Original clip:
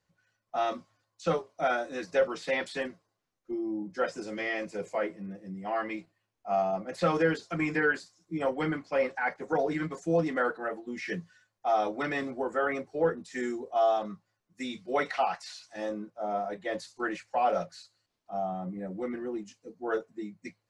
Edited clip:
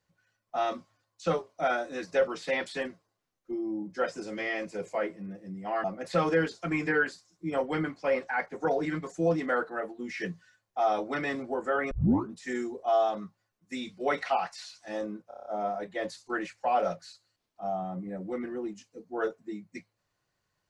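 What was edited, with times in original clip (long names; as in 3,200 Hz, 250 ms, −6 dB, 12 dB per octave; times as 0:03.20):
0:05.84–0:06.72: remove
0:12.79: tape start 0.42 s
0:16.16: stutter 0.03 s, 7 plays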